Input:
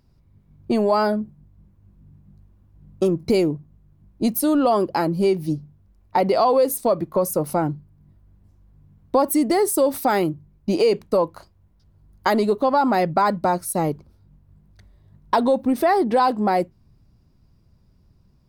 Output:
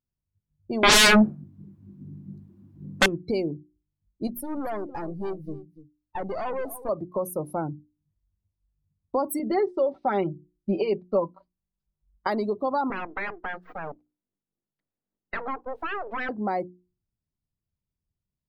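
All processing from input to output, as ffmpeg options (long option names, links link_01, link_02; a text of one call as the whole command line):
ffmpeg -i in.wav -filter_complex "[0:a]asettb=1/sr,asplit=3[link_01][link_02][link_03];[link_01]atrim=end=0.834[link_04];[link_02]atrim=start=0.83:end=3.06,asetpts=PTS-STARTPTS,afade=type=in:duration=0.004:curve=qsin,afade=type=out:start_time=2.226:duration=0.004:curve=qsin,highpass=240,acontrast=31,aeval=exprs='0.562*sin(PI/2*7.08*val(0)/0.562)':channel_layout=same[link_05];[link_03]atrim=start=3.056[link_06];[link_04][link_05]acrossfade=duration=0.004:curve1=hsin:curve2=qsin[link_07];[link_07][link_06]acrossfade=duration=0.004:curve1=qsin:curve2=hsin,asettb=1/sr,asplit=3[link_08][link_09][link_10];[link_08]atrim=end=4.274[link_11];[link_09]atrim=start=4.27:end=6.89,asetpts=PTS-STARTPTS,afade=type=in:duration=0.004:curve=qsin,afade=type=out:start_time=2.616:duration=0.004:curve=qsin,aeval=exprs='(tanh(10*val(0)+0.6)-tanh(0.6))/10':channel_layout=same,aecho=1:1:290:0.224,atrim=end_sample=115542[link_12];[link_10]atrim=start=6.886[link_13];[link_11][link_12]acrossfade=duration=0.004:curve1=hsin:curve2=qsin[link_14];[link_14][link_13]acrossfade=duration=0.004:curve1=qsin:curve2=hsin,asettb=1/sr,asplit=3[link_15][link_16][link_17];[link_15]atrim=end=9.394[link_18];[link_16]atrim=start=9.39:end=12.27,asetpts=PTS-STARTPTS,afade=type=in:duration=0.004:curve=qsin,afade=type=out:start_time=2.876:duration=0.004:curve=qsin,lowpass=frequency=4000:width=0.5412,lowpass=frequency=4000:width=1.3066,aecho=1:1:5.2:0.66,atrim=end_sample=127008[link_19];[link_17]atrim=start=12.266[link_20];[link_18][link_19]acrossfade=duration=0.004:curve1=hsin:curve2=qsin[link_21];[link_21][link_20]acrossfade=duration=0.004:curve1=qsin:curve2=hsin,asettb=1/sr,asplit=3[link_22][link_23][link_24];[link_22]atrim=end=12.904[link_25];[link_23]atrim=start=12.9:end=16.29,asetpts=PTS-STARTPTS,afade=type=in:duration=0.004:curve=qsin,afade=type=out:start_time=3.386:duration=0.004:curve=qsin,aeval=exprs='abs(val(0))':channel_layout=same,acrossover=split=210 4000:gain=0.224 1 0.224[link_26][link_27][link_28];[link_26][link_27][link_28]amix=inputs=3:normalize=0[link_29];[link_24]atrim=start=16.286[link_30];[link_25][link_29]acrossfade=duration=0.004:curve1=hsin:curve2=qsin[link_31];[link_31][link_30]acrossfade=duration=0.004:curve1=qsin:curve2=hsin,afftdn=noise_reduction=22:noise_floor=-32,bandreject=frequency=60:width_type=h:width=6,bandreject=frequency=120:width_type=h:width=6,bandreject=frequency=180:width_type=h:width=6,bandreject=frequency=240:width_type=h:width=6,bandreject=frequency=300:width_type=h:width=6,bandreject=frequency=360:width_type=h:width=6,volume=-7.5dB" out.wav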